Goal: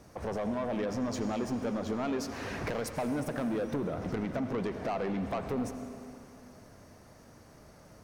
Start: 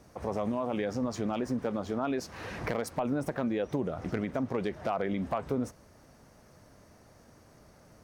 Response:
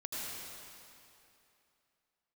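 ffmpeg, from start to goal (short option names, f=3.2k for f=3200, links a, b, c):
-filter_complex "[0:a]asoftclip=type=tanh:threshold=-29.5dB,asplit=2[a][b];[1:a]atrim=start_sample=2205[c];[b][c]afir=irnorm=-1:irlink=0,volume=-7.5dB[d];[a][d]amix=inputs=2:normalize=0"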